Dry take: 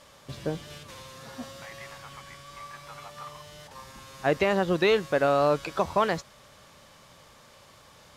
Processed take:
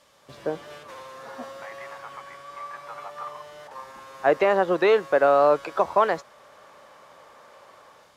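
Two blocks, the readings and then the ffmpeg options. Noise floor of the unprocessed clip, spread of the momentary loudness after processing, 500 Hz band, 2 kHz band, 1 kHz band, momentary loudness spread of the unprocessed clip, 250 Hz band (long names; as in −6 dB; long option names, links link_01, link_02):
−54 dBFS, 22 LU, +4.5 dB, +2.0 dB, +5.5 dB, 22 LU, −1.0 dB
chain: -filter_complex "[0:a]acrossover=split=360|1800[link_01][link_02][link_03];[link_01]lowshelf=frequency=160:gain=-9[link_04];[link_02]dynaudnorm=framelen=150:gausssize=5:maxgain=13dB[link_05];[link_04][link_05][link_03]amix=inputs=3:normalize=0,volume=-5.5dB"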